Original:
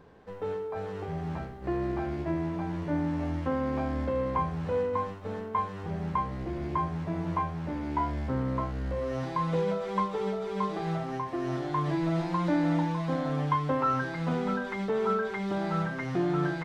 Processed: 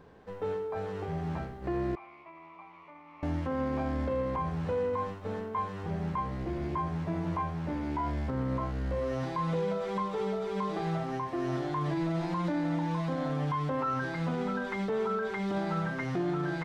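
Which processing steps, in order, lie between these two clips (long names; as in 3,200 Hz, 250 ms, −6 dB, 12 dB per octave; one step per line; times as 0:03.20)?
brickwall limiter −23.5 dBFS, peak gain reduction 8.5 dB
0:01.95–0:03.23: pair of resonant band-passes 1,600 Hz, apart 1 octave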